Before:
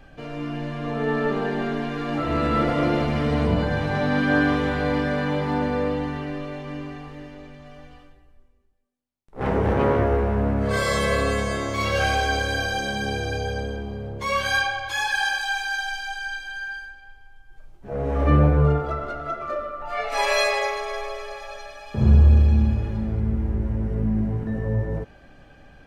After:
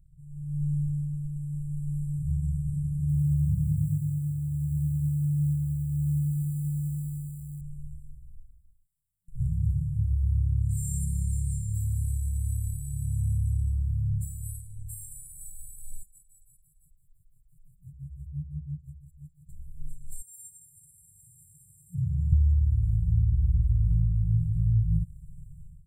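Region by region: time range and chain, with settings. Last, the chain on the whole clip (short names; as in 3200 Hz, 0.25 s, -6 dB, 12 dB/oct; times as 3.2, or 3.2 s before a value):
3–7.61 HPF 60 Hz + lo-fi delay 89 ms, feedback 80%, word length 7-bit, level -12 dB
16.03–19.49 HPF 130 Hz 6 dB/oct + compressor, threshold -33 dBFS + photocell phaser 5.9 Hz
20.22–22.33 HPF 100 Hz 24 dB/oct + compressor 3:1, threshold -33 dBFS
whole clip: compressor, threshold -27 dBFS; FFT band-reject 180–7200 Hz; AGC gain up to 16 dB; gain -7.5 dB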